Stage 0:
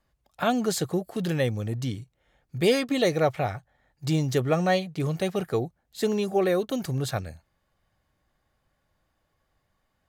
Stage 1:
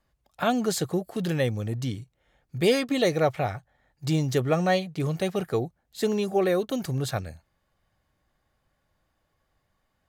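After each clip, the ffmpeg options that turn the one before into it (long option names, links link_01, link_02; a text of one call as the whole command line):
ffmpeg -i in.wav -af anull out.wav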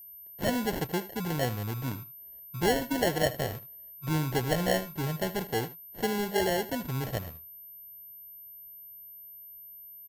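ffmpeg -i in.wav -af "acrusher=samples=36:mix=1:aa=0.000001,aeval=exprs='val(0)+0.00891*sin(2*PI*13000*n/s)':channel_layout=same,aecho=1:1:77:0.158,volume=-4.5dB" out.wav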